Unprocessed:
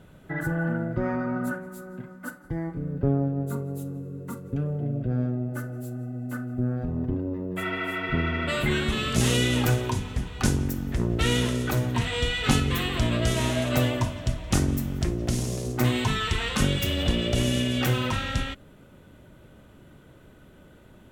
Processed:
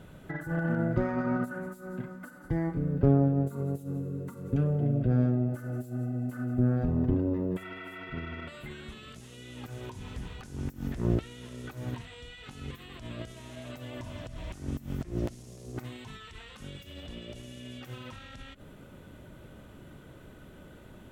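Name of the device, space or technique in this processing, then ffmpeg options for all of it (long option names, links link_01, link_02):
de-esser from a sidechain: -filter_complex "[0:a]asplit=2[link_01][link_02];[link_02]highpass=4500,apad=whole_len=931186[link_03];[link_01][link_03]sidechaincompress=threshold=-55dB:ratio=16:attack=0.78:release=77,volume=1.5dB"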